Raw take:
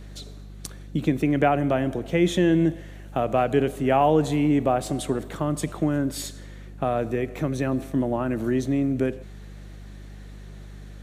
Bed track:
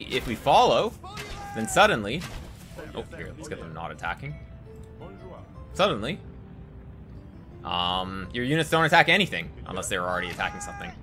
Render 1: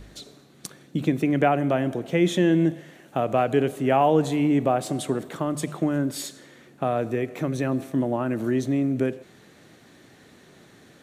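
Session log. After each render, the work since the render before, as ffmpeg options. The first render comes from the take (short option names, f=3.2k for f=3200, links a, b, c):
-af "bandreject=f=50:t=h:w=4,bandreject=f=100:t=h:w=4,bandreject=f=150:t=h:w=4,bandreject=f=200:t=h:w=4"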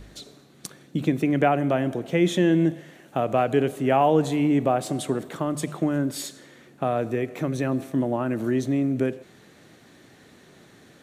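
-af anull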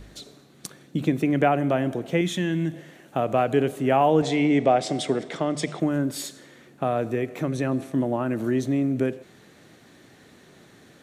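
-filter_complex "[0:a]asettb=1/sr,asplit=3[a][b][c];[a]atrim=end=2.214[d];[b]atrim=start=2.21:end=2.74,asetpts=PTS-STARTPTS,afade=t=in:d=0.004:c=qsin,afade=t=out:st=0.526:d=0.004:c=qsin,equalizer=f=480:t=o:w=1.5:g=-11.5[e];[c]atrim=start=2.736[f];[d][e]acrossfade=d=0.004:c1=hsin:c2=qsin[g];[g][f]acrossfade=d=0.004:c1=qsin:c2=hsin,asettb=1/sr,asplit=3[h][i][j];[h]atrim=end=4.224[k];[i]atrim=start=4.22:end=5.8,asetpts=PTS-STARTPTS,afade=t=in:d=0.004:c=qsin,afade=t=out:st=1.576:d=0.004:c=qsin,highpass=120,equalizer=f=450:t=q:w=4:g=4,equalizer=f=690:t=q:w=4:g=5,equalizer=f=1.1k:t=q:w=4:g=-3,equalizer=f=2.1k:t=q:w=4:g=9,equalizer=f=3.4k:t=q:w=4:g=6,equalizer=f=5.2k:t=q:w=4:g=9,lowpass=f=8.7k:w=0.5412,lowpass=f=8.7k:w=1.3066[l];[j]atrim=start=5.796[m];[k][l]acrossfade=d=0.004:c1=hsin:c2=qsin[n];[n][m]acrossfade=d=0.004:c1=qsin:c2=hsin,asettb=1/sr,asplit=3[o][p][q];[o]atrim=end=7.454[r];[p]atrim=start=7.45:end=7.93,asetpts=PTS-STARTPTS,afade=t=in:d=0.004:c=qsin,afade=t=out:st=0.476:d=0.004:c=qsin,lowpass=f=12k:w=0.5412,lowpass=f=12k:w=1.3066[s];[q]atrim=start=7.926[t];[r][s]acrossfade=d=0.004:c1=hsin:c2=qsin[u];[u][t]acrossfade=d=0.004:c1=qsin:c2=hsin"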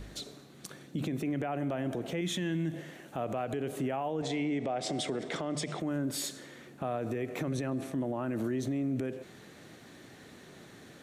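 -af "acompressor=threshold=-24dB:ratio=6,alimiter=level_in=1dB:limit=-24dB:level=0:latency=1:release=60,volume=-1dB"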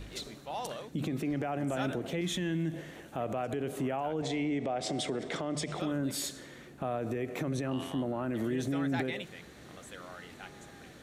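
-filter_complex "[1:a]volume=-20dB[a];[0:a][a]amix=inputs=2:normalize=0"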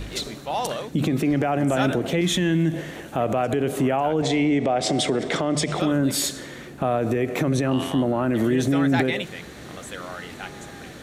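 -af "volume=11.5dB"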